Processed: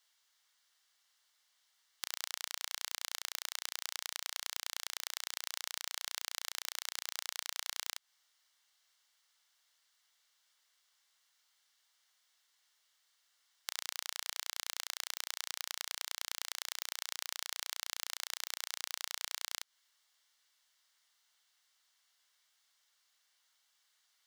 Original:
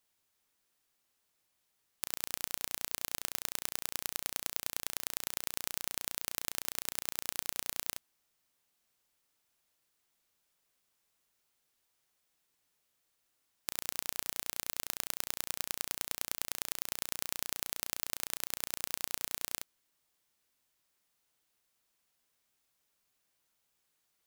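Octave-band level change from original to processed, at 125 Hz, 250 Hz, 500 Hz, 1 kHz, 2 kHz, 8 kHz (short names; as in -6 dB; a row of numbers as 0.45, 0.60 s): under -20 dB, under -15 dB, -9.0 dB, -2.0 dB, 0.0 dB, -3.0 dB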